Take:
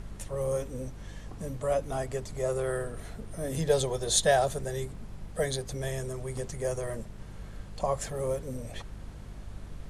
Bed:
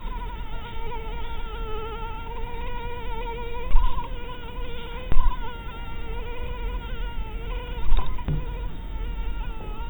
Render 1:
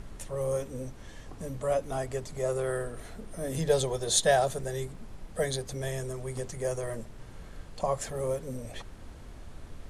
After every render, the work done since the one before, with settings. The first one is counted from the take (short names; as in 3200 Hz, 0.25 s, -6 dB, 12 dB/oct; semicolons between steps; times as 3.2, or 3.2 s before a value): de-hum 50 Hz, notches 4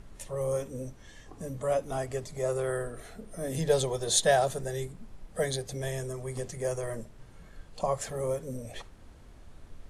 noise print and reduce 6 dB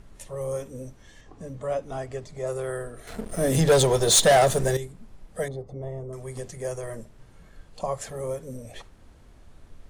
1.21–2.47 air absorption 60 m; 3.07–4.77 sample leveller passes 3; 5.48–6.13 polynomial smoothing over 65 samples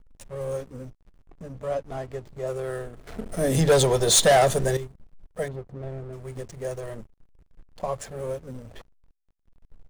backlash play -37 dBFS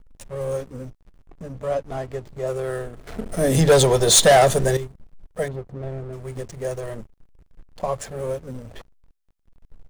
gain +4 dB